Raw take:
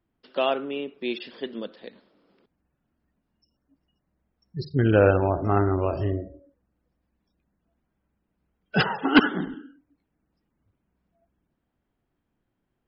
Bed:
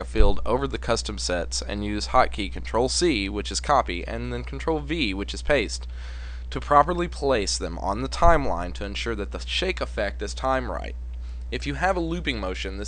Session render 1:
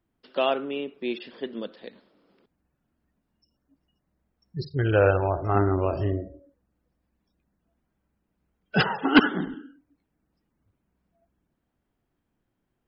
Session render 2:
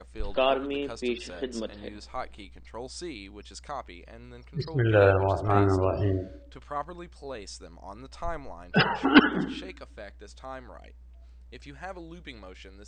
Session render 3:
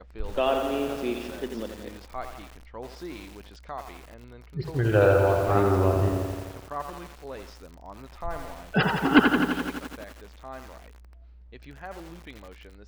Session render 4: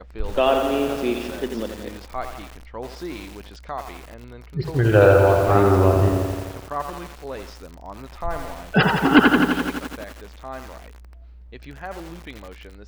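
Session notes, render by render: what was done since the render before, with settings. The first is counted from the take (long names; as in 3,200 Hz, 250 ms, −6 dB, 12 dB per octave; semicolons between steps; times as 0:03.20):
0:01.01–0:01.57: high-shelf EQ 3,600 Hz −8 dB; 0:04.67–0:05.55: parametric band 230 Hz −13 dB 0.81 octaves
mix in bed −16.5 dB
high-frequency loss of the air 210 metres; feedback echo at a low word length 85 ms, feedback 80%, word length 7 bits, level −6 dB
level +6 dB; brickwall limiter −3 dBFS, peak gain reduction 3 dB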